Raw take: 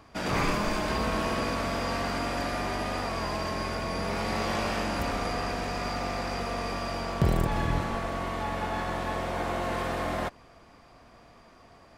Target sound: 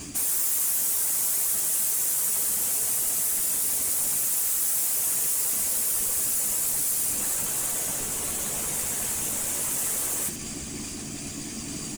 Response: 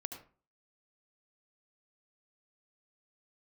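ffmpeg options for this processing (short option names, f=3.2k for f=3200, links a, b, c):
-af "firequalizer=gain_entry='entry(130,0);entry(270,9);entry(420,-12);entry(1000,-14);entry(2700,5);entry(6000,6);entry(9000,-2);entry(13000,-25)':delay=0.05:min_phase=1,aeval=exprs='0.141*sin(PI/2*7.94*val(0)/0.141)':c=same,aecho=1:1:4.5:0.61,areverse,acompressor=threshold=-30dB:ratio=16,areverse,aexciter=amount=6.6:drive=8.2:freq=7.6k,asoftclip=type=tanh:threshold=-31.5dB,highshelf=f=5.1k:t=q:w=1.5:g=6.5,acrusher=bits=3:mode=log:mix=0:aa=0.000001,afftfilt=real='hypot(re,im)*cos(2*PI*random(0))':imag='hypot(re,im)*sin(2*PI*random(1))':win_size=512:overlap=0.75,aecho=1:1:14|77:0.473|0.282,volume=5dB"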